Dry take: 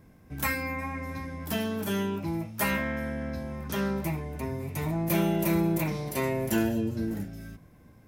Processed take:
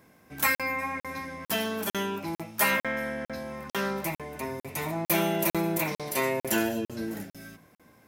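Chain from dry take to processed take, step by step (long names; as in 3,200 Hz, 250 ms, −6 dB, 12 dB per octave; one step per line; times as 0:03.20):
high-pass filter 620 Hz 6 dB per octave
convolution reverb RT60 0.35 s, pre-delay 67 ms, DRR 19.5 dB
regular buffer underruns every 0.45 s, samples 2,048, zero, from 0:00.55
level +5.5 dB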